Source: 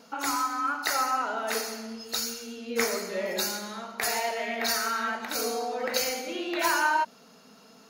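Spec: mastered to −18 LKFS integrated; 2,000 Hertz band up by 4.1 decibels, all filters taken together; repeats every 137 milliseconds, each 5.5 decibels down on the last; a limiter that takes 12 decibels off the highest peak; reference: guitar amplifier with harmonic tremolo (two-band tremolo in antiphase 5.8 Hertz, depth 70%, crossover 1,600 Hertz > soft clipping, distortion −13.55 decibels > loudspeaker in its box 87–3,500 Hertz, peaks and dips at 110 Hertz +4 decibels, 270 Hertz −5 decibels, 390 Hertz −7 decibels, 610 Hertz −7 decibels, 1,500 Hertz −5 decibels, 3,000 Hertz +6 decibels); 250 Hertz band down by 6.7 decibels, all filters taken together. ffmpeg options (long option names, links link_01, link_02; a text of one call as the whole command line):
ffmpeg -i in.wav -filter_complex "[0:a]equalizer=frequency=250:width_type=o:gain=-4,equalizer=frequency=2000:width_type=o:gain=8,alimiter=limit=-16.5dB:level=0:latency=1,aecho=1:1:137|274|411|548|685|822|959:0.531|0.281|0.149|0.079|0.0419|0.0222|0.0118,acrossover=split=1600[link_01][link_02];[link_01]aeval=exprs='val(0)*(1-0.7/2+0.7/2*cos(2*PI*5.8*n/s))':channel_layout=same[link_03];[link_02]aeval=exprs='val(0)*(1-0.7/2-0.7/2*cos(2*PI*5.8*n/s))':channel_layout=same[link_04];[link_03][link_04]amix=inputs=2:normalize=0,asoftclip=threshold=-26.5dB,highpass=87,equalizer=frequency=110:width_type=q:width=4:gain=4,equalizer=frequency=270:width_type=q:width=4:gain=-5,equalizer=frequency=390:width_type=q:width=4:gain=-7,equalizer=frequency=610:width_type=q:width=4:gain=-7,equalizer=frequency=1500:width_type=q:width=4:gain=-5,equalizer=frequency=3000:width_type=q:width=4:gain=6,lowpass=frequency=3500:width=0.5412,lowpass=frequency=3500:width=1.3066,volume=16.5dB" out.wav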